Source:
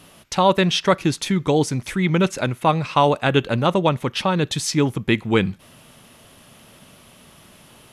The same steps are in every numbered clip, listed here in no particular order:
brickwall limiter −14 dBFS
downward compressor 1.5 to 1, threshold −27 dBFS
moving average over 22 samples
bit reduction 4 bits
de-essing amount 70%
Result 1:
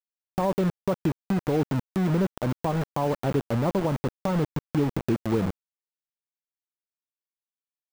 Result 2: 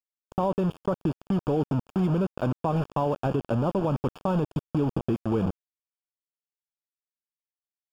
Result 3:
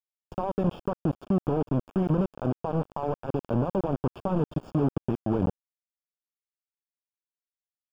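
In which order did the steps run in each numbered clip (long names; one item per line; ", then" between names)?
moving average, then bit reduction, then downward compressor, then brickwall limiter, then de-essing
de-essing, then bit reduction, then moving average, then brickwall limiter, then downward compressor
brickwall limiter, then downward compressor, then bit reduction, then de-essing, then moving average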